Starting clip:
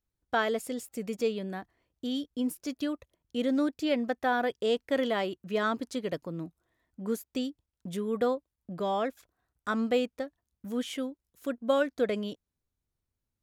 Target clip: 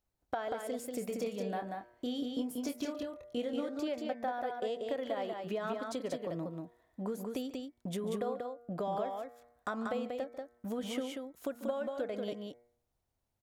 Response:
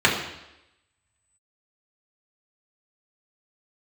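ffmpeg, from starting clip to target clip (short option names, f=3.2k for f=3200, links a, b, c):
-filter_complex "[0:a]equalizer=f=710:w=1.4:g=10,bandreject=f=119.3:t=h:w=4,bandreject=f=238.6:t=h:w=4,bandreject=f=357.9:t=h:w=4,bandreject=f=477.2:t=h:w=4,bandreject=f=596.5:t=h:w=4,bandreject=f=715.8:t=h:w=4,bandreject=f=835.1:t=h:w=4,bandreject=f=954.4:t=h:w=4,bandreject=f=1.0737k:t=h:w=4,bandreject=f=1.193k:t=h:w=4,bandreject=f=1.3123k:t=h:w=4,bandreject=f=1.4316k:t=h:w=4,bandreject=f=1.5509k:t=h:w=4,bandreject=f=1.6702k:t=h:w=4,bandreject=f=1.7895k:t=h:w=4,bandreject=f=1.9088k:t=h:w=4,bandreject=f=2.0281k:t=h:w=4,bandreject=f=2.1474k:t=h:w=4,bandreject=f=2.2667k:t=h:w=4,acompressor=threshold=-34dB:ratio=10,asettb=1/sr,asplit=3[a][b][c];[a]atrim=end=0.994[d];[b]atrim=start=0.99:end=3.69,asetpts=PTS-STARTPTS,afade=t=in:d=0.004:c=qsin,afade=t=out:st=2.696:d=0.004:c=qsin,asplit=2[e][f];[f]adelay=25,volume=-7.5dB[g];[e][g]amix=inputs=2:normalize=0,atrim=end_sample=119070[h];[c]atrim=start=3.686[i];[d][h]acrossfade=d=0.004:c1=hsin:c2=qsin[j];[j][i]acrossfade=d=0.004:c1=qsin:c2=hsin,aecho=1:1:143|187:0.141|0.631"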